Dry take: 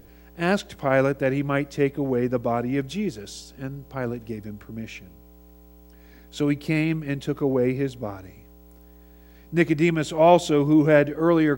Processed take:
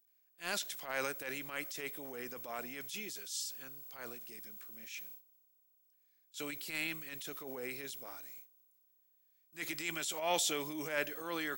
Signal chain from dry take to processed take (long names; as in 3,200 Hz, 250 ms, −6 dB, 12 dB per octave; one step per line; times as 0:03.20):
noise gate with hold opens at −35 dBFS
first difference
transient designer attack −12 dB, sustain +4 dB
level +4 dB